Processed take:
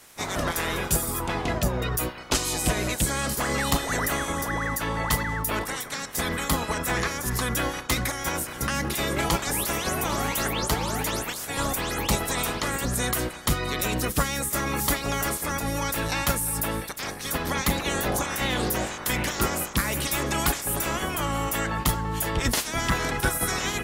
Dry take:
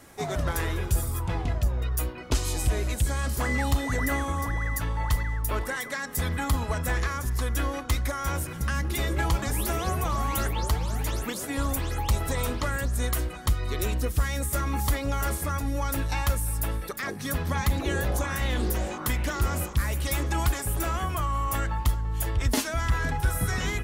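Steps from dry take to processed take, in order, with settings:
ceiling on every frequency bin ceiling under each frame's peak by 19 dB

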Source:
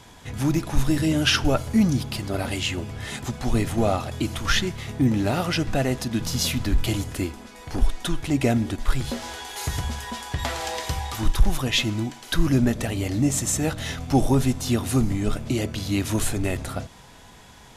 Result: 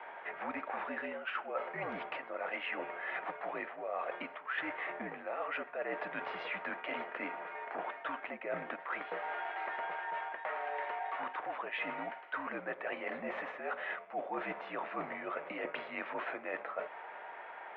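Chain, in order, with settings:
single-sideband voice off tune −60 Hz 580–2,300 Hz
reversed playback
downward compressor 10 to 1, threshold −41 dBFS, peak gain reduction 20.5 dB
reversed playback
level +5.5 dB

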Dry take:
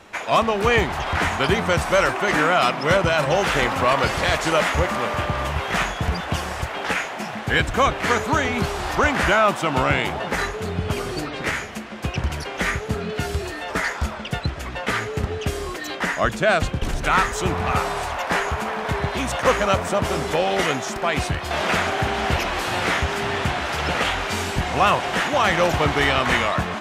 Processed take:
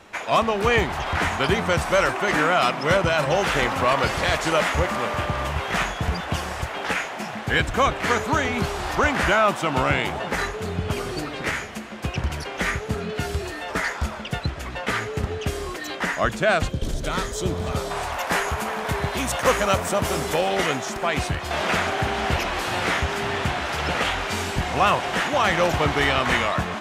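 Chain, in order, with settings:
0:16.69–0:17.91: gain on a spectral selection 670–3,000 Hz −9 dB
0:18.12–0:20.41: high-shelf EQ 8,400 Hz +12 dB
delay with a high-pass on its return 287 ms, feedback 71%, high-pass 5,500 Hz, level −16 dB
level −1.5 dB

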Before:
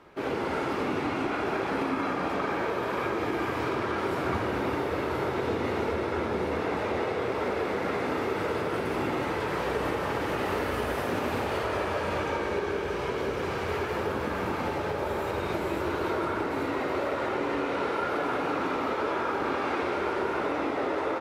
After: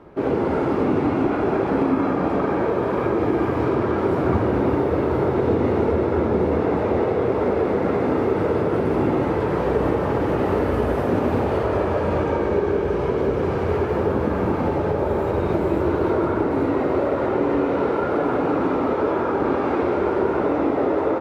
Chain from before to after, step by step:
tilt shelving filter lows +9 dB, about 1,200 Hz
level +3 dB

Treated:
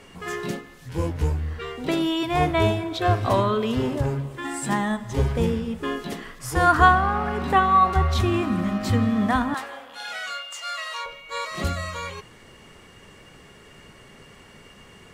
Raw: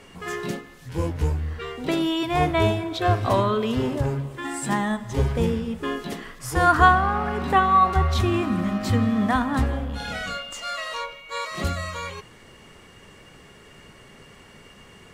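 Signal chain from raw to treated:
0:09.54–0:11.06: high-pass filter 820 Hz 12 dB per octave

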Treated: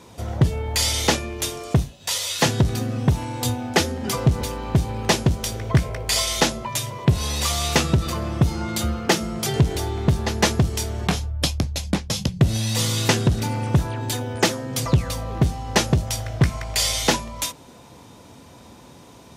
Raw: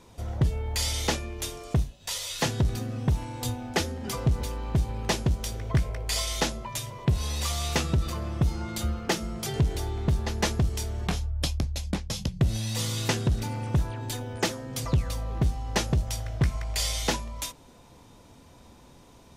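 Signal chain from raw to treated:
high-pass filter 87 Hz 12 dB per octave
level +8 dB

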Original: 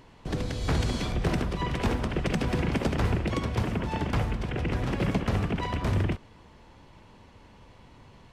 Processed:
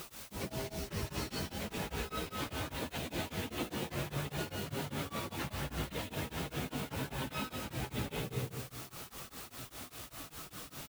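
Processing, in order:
high-pass filter 48 Hz 6 dB per octave
tilt shelving filter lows −5 dB, about 1,400 Hz
multi-tap delay 113/135 ms −18.5/−9 dB
convolution reverb RT60 0.90 s, pre-delay 80 ms, DRR 2.5 dB
speed change +30%
reversed playback
downward compressor 10 to 1, threshold −39 dBFS, peak gain reduction 15.5 dB
reversed playback
time stretch by phase vocoder 1.7×
high-shelf EQ 5,100 Hz −9 dB
in parallel at −4.5 dB: bit-depth reduction 8 bits, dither triangular
on the sum: tremolo along a rectified sine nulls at 5 Hz
level +5 dB

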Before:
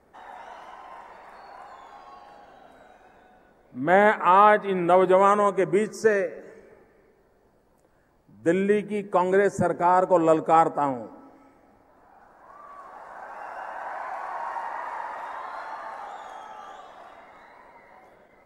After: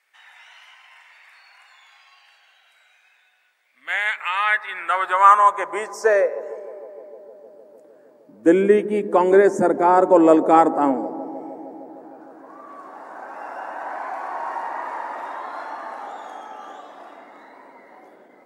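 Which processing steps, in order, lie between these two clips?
high-pass filter sweep 2,400 Hz → 280 Hz, 0:04.27–0:07.20
bucket-brigade delay 153 ms, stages 1,024, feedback 82%, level −17.5 dB
level +3 dB

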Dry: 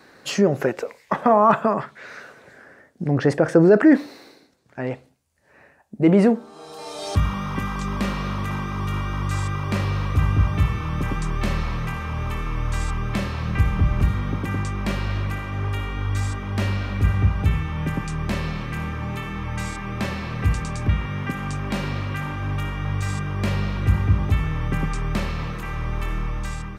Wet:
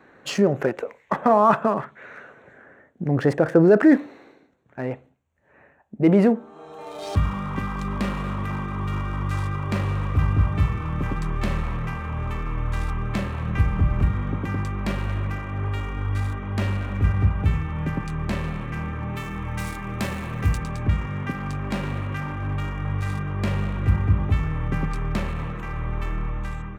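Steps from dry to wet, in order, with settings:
adaptive Wiener filter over 9 samples
0:19.16–0:20.58: high-shelf EQ 6,100 Hz +12 dB
level −1 dB

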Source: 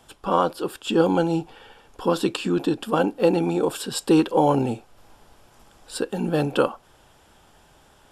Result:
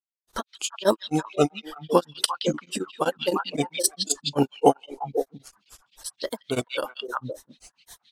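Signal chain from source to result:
granular cloud 161 ms, grains 3.7 per second, spray 306 ms, pitch spread up and down by 3 semitones
bass and treble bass −4 dB, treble +14 dB
on a send: echo through a band-pass that steps 171 ms, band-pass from 3,100 Hz, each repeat −1.4 octaves, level −0.5 dB
on the sum: reverb reduction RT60 1.6 s
in parallel at −3 dB: downward compressor, threshold −34 dBFS, peak gain reduction 18 dB
on the sum: tremolo along a rectified sine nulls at 7.7 Hz
level +4 dB

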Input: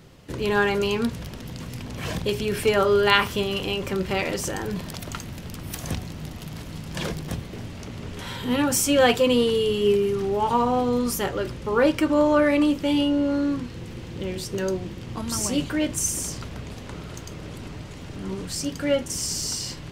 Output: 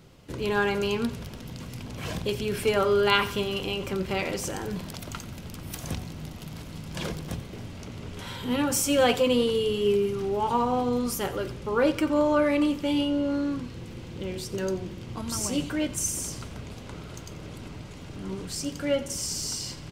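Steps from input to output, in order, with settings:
notch filter 1,800 Hz, Q 16
repeating echo 89 ms, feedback 46%, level −16.5 dB
level −3.5 dB

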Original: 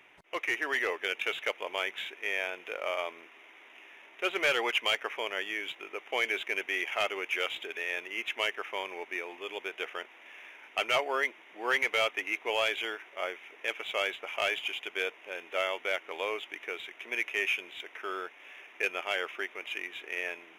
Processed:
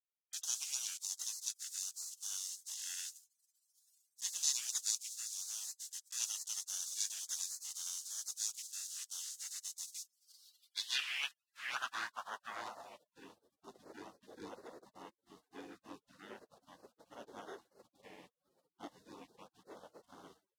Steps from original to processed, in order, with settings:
bit-depth reduction 8 bits, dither none
gate on every frequency bin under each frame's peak −25 dB weak
band-pass filter sweep 6,700 Hz → 420 Hz, 0:09.96–0:13.38
level +15.5 dB

